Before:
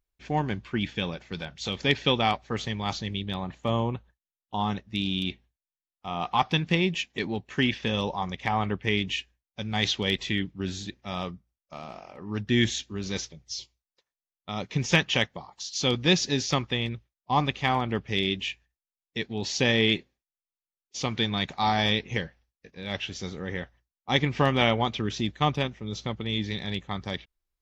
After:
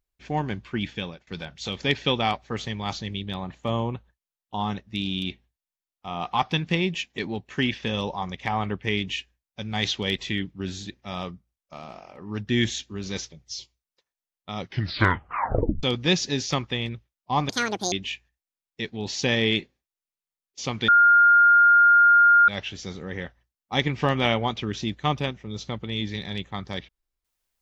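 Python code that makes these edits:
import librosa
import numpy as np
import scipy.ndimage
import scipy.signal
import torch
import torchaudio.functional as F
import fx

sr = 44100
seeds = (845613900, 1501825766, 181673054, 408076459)

y = fx.edit(x, sr, fx.fade_out_to(start_s=0.82, length_s=0.45, curve='qsin', floor_db=-23.5),
    fx.tape_stop(start_s=14.56, length_s=1.27),
    fx.speed_span(start_s=17.49, length_s=0.8, speed=1.85),
    fx.bleep(start_s=21.25, length_s=1.6, hz=1410.0, db=-12.0), tone=tone)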